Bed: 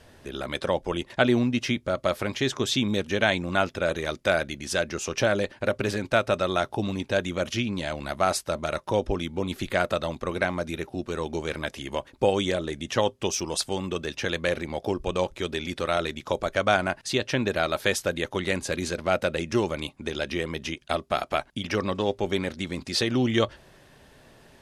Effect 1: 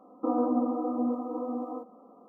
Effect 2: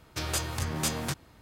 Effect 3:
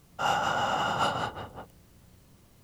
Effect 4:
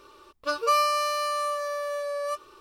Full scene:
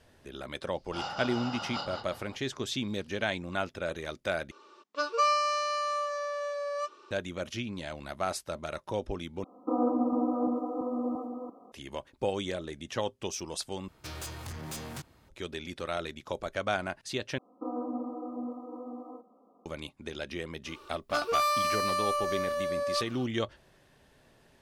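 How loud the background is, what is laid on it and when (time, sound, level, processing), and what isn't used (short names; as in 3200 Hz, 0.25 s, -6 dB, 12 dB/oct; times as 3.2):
bed -8.5 dB
0.74 add 3 -11.5 dB + synth low-pass 4700 Hz, resonance Q 8
4.51 replace with 4 -3 dB + elliptic band-pass 210–6900 Hz, stop band 60 dB
9.44 replace with 1 -1.5 dB + reverse delay 0.343 s, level -5 dB
13.88 replace with 2 -5 dB + soft clip -30.5 dBFS
17.38 replace with 1 -8.5 dB
20.66 add 4 + soft clip -23 dBFS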